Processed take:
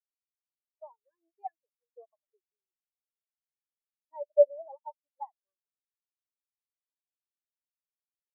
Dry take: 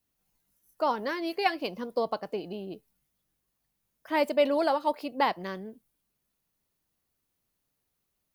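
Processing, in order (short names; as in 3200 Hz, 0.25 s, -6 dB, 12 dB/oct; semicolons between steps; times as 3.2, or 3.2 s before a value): HPF 470 Hz 12 dB/oct; spectral expander 4:1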